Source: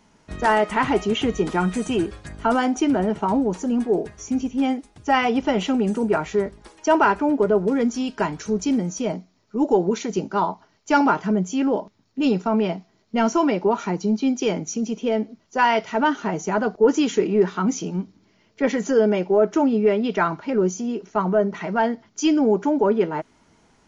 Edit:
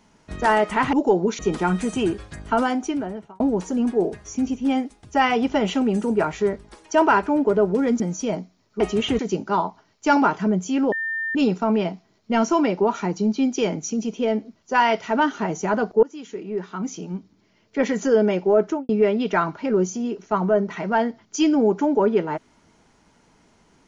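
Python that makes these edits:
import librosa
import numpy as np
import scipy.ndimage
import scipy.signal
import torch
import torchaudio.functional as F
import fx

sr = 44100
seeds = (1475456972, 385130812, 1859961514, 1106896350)

y = fx.studio_fade_out(x, sr, start_s=19.47, length_s=0.26)
y = fx.edit(y, sr, fx.swap(start_s=0.93, length_s=0.39, other_s=9.57, other_length_s=0.46),
    fx.fade_out_span(start_s=2.46, length_s=0.87),
    fx.cut(start_s=7.93, length_s=0.84),
    fx.bleep(start_s=11.76, length_s=0.43, hz=1800.0, db=-23.5),
    fx.fade_in_from(start_s=16.87, length_s=1.89, floor_db=-23.0), tone=tone)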